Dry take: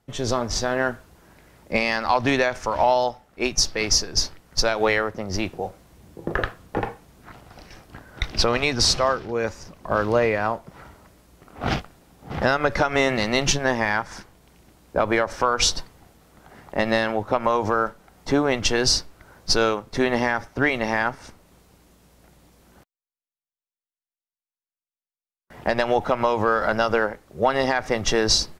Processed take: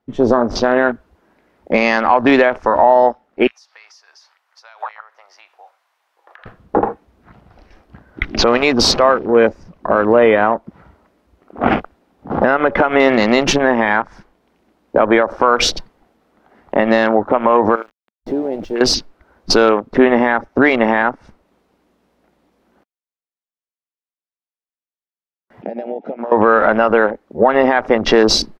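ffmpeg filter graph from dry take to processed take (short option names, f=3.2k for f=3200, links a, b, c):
-filter_complex "[0:a]asettb=1/sr,asplit=3[a][b][c];[a]atrim=end=3.474[d];[b]atrim=start=3.47:end=6.46,asetpts=PTS-STARTPTS,afade=t=in:d=0.004:c=qsin,afade=t=out:st=2.986:d=0.004:c=qsin,highpass=f=870:w=0.5412,highpass=f=870:w=1.3066,acompressor=threshold=-35dB:ratio=4:attack=3.2:release=140:knee=1:detection=peak[e];[c]atrim=start=6.456[f];[d][e]acrossfade=d=0.004:c1=hsin:c2=qsin[g];[g][f]acrossfade=d=0.004:c1=qsin:c2=hsin,asettb=1/sr,asplit=3[h][i][j];[h]atrim=end=17.754[k];[i]atrim=start=17.75:end=18.81,asetpts=PTS-STARTPTS,afade=t=in:d=0.004:c=qsin,afade=t=out:st=1.056:d=0.004:c=qsin,equalizer=f=370:w=6.1:g=7,acompressor=threshold=-31dB:ratio=5:attack=3.2:release=140:knee=1:detection=peak,aeval=exprs='val(0)*gte(abs(val(0)),0.0141)':c=same[l];[j]atrim=start=18.806[m];[k][l]acrossfade=d=0.004:c1=hsin:c2=qsin[n];[n][m]acrossfade=d=0.004:c1=qsin:c2=hsin,asettb=1/sr,asplit=3[o][p][q];[o]atrim=end=25.624[r];[p]atrim=start=25.62:end=26.32,asetpts=PTS-STARTPTS,afade=t=in:d=0.004:c=qsin,afade=t=out:st=0.696:d=0.004:c=qsin,acompressor=threshold=-31dB:ratio=12:attack=3.2:release=140:knee=1:detection=peak,highpass=f=180:w=0.5412,highpass=f=180:w=1.3066,equalizer=f=190:t=q:w=4:g=5,equalizer=f=320:t=q:w=4:g=-4,equalizer=f=1.1k:t=q:w=4:g=-10,equalizer=f=2.4k:t=q:w=4:g=6,equalizer=f=4.2k:t=q:w=4:g=-5,lowpass=f=6k:w=0.5412,lowpass=f=6k:w=1.3066[s];[q]atrim=start=26.316[t];[r][s]acrossfade=d=0.004:c1=hsin:c2=qsin[u];[u][t]acrossfade=d=0.004:c1=qsin:c2=hsin,afwtdn=0.0251,firequalizer=gain_entry='entry(140,0);entry(220,13);entry(7300,-2)':delay=0.05:min_phase=1,alimiter=limit=-3dB:level=0:latency=1:release=215,volume=2dB"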